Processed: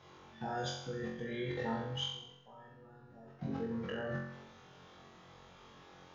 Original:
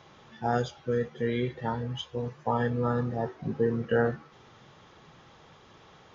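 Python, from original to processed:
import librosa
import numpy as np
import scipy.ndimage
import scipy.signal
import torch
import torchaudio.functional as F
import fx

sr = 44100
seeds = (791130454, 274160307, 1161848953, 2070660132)

p1 = fx.level_steps(x, sr, step_db=22)
p2 = fx.comb_fb(p1, sr, f0_hz=140.0, decay_s=1.5, harmonics='all', damping=0.0, mix_pct=90, at=(2.11, 3.39))
p3 = p2 + fx.room_flutter(p2, sr, wall_m=3.8, rt60_s=0.73, dry=0)
y = p3 * 10.0 ** (4.0 / 20.0)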